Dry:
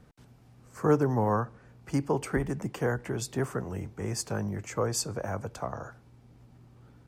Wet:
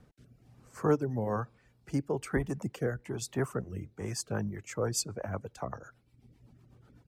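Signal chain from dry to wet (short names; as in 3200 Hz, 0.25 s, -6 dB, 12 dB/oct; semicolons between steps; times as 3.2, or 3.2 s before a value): rotary speaker horn 1.1 Hz, later 8 Hz, at 3.87; reverb removal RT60 0.91 s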